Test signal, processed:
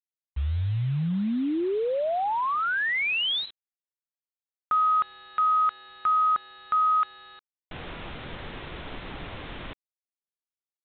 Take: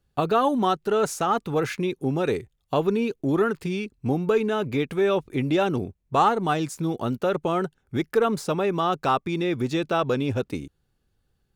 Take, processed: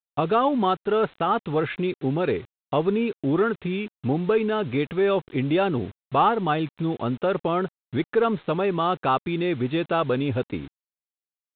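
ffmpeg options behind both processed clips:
-af "acontrast=41,aresample=8000,acrusher=bits=6:mix=0:aa=0.000001,aresample=44100,volume=-5dB"

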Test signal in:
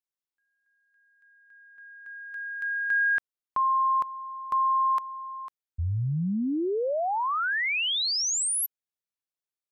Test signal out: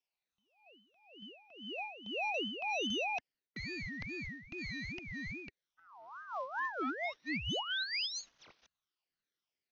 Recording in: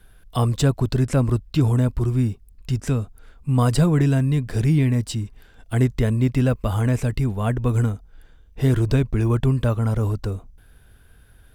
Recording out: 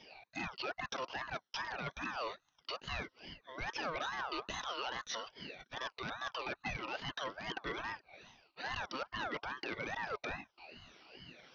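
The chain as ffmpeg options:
-af "afftfilt=real='re*pow(10,17/40*sin(2*PI*(0.98*log(max(b,1)*sr/1024/100)/log(2)-(-1.9)*(pts-256)/sr)))':imag='im*pow(10,17/40*sin(2*PI*(0.98*log(max(b,1)*sr/1024/100)/log(2)-(-1.9)*(pts-256)/sr)))':win_size=1024:overlap=0.75,highpass=690,areverse,acompressor=threshold=-35dB:ratio=12:attack=0.93:release=291:knee=6:detection=peak,areverse,aeval=exprs='0.0168*(abs(mod(val(0)/0.0168+3,4)-2)-1)':c=same,acrusher=bits=6:mode=log:mix=0:aa=0.000001,asuperstop=centerf=910:order=12:qfactor=2.9,aresample=11025,aresample=44100,aeval=exprs='val(0)*sin(2*PI*1100*n/s+1100*0.3/2.4*sin(2*PI*2.4*n/s))':c=same,volume=6.5dB"

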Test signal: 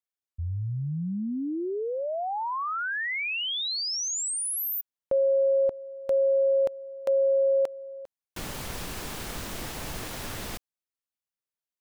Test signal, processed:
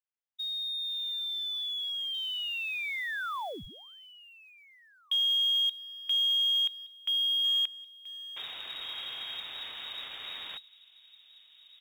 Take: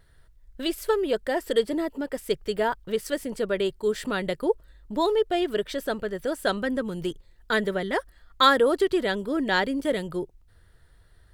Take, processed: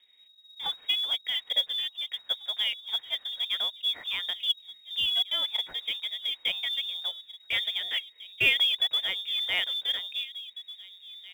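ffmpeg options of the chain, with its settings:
-filter_complex "[0:a]asplit=2[a][b];[b]adelay=1749,volume=-15dB,highshelf=f=4k:g=-39.4[c];[a][c]amix=inputs=2:normalize=0,lowpass=f=3.2k:t=q:w=0.5098,lowpass=f=3.2k:t=q:w=0.6013,lowpass=f=3.2k:t=q:w=0.9,lowpass=f=3.2k:t=q:w=2.563,afreqshift=-3800,acrusher=bits=6:mode=log:mix=0:aa=0.000001,volume=-4.5dB"

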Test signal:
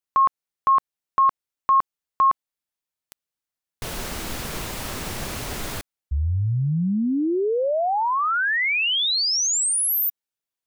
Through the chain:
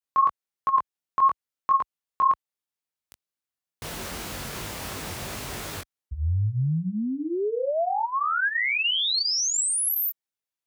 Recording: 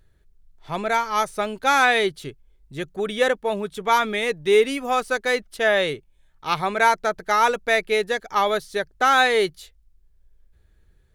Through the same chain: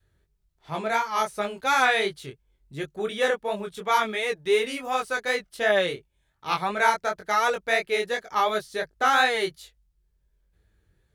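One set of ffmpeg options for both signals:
-af "highpass=53,adynamicequalizer=threshold=0.0126:dfrequency=260:dqfactor=1.1:tfrequency=260:tqfactor=1.1:attack=5:release=100:ratio=0.375:range=3:mode=cutabove:tftype=bell,flanger=delay=19:depth=4.2:speed=2.8"

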